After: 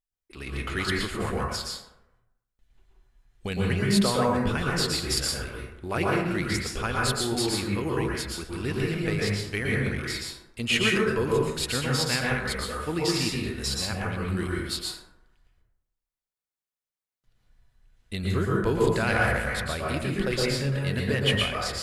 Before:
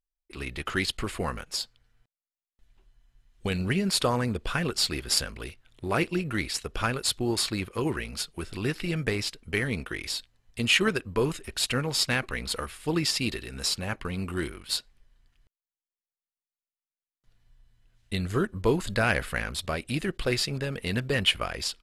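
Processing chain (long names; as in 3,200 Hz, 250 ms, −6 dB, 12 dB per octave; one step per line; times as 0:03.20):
dense smooth reverb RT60 0.89 s, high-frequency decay 0.4×, pre-delay 105 ms, DRR −3.5 dB
level −3 dB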